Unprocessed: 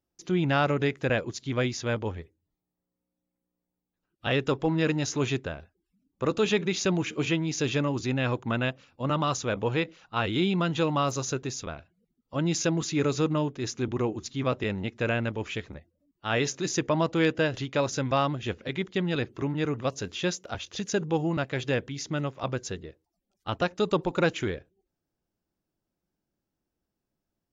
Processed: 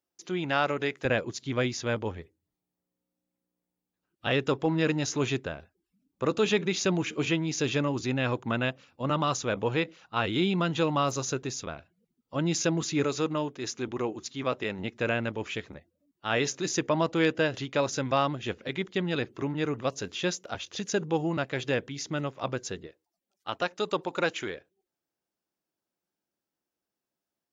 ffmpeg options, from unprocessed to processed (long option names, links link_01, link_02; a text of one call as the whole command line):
ffmpeg -i in.wav -af "asetnsamples=nb_out_samples=441:pad=0,asendcmd='1.05 highpass f 110;13.04 highpass f 340;14.79 highpass f 160;22.87 highpass f 550',highpass=frequency=450:poles=1" out.wav